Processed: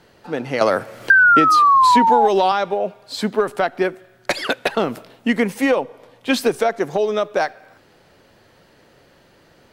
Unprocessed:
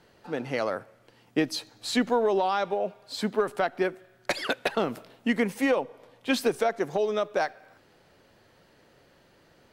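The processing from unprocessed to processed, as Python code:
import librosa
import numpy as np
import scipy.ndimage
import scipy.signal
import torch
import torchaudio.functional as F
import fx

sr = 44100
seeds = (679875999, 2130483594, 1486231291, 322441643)

y = fx.spec_paint(x, sr, seeds[0], shape='fall', start_s=1.1, length_s=1.18, low_hz=800.0, high_hz=1600.0, level_db=-21.0)
y = fx.band_squash(y, sr, depth_pct=100, at=(0.61, 2.52))
y = y * 10.0 ** (7.0 / 20.0)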